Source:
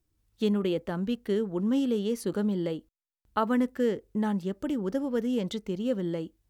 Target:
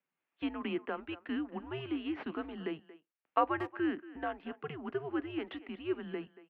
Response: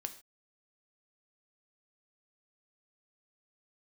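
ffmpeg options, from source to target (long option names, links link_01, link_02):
-filter_complex "[0:a]aemphasis=mode=production:type=riaa,acrossover=split=1600[link_01][link_02];[link_02]aeval=exprs='clip(val(0),-1,0.0188)':channel_layout=same[link_03];[link_01][link_03]amix=inputs=2:normalize=0,highpass=frequency=420:width_type=q:width=0.5412,highpass=frequency=420:width_type=q:width=1.307,lowpass=frequency=2700:width_type=q:width=0.5176,lowpass=frequency=2700:width_type=q:width=0.7071,lowpass=frequency=2700:width_type=q:width=1.932,afreqshift=-150,asplit=2[link_04][link_05];[link_05]adelay=230,highpass=300,lowpass=3400,asoftclip=type=hard:threshold=-23.5dB,volume=-16dB[link_06];[link_04][link_06]amix=inputs=2:normalize=0"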